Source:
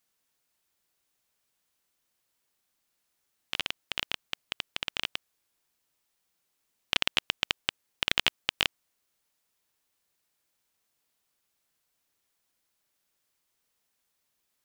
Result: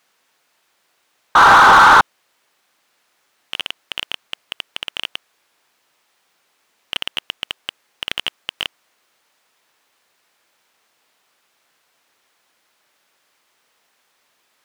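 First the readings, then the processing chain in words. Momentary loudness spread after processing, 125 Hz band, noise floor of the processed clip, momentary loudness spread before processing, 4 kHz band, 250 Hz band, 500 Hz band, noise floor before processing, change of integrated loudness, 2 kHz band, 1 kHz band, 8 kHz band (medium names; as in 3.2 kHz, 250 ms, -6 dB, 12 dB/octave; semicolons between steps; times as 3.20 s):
23 LU, +14.0 dB, -65 dBFS, 10 LU, +6.5 dB, +15.0 dB, +18.0 dB, -78 dBFS, +15.5 dB, +17.5 dB, +30.5 dB, +10.5 dB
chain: painted sound noise, 1.35–2.01 s, 770–1600 Hz -13 dBFS; overdrive pedal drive 29 dB, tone 1.9 kHz, clips at -1 dBFS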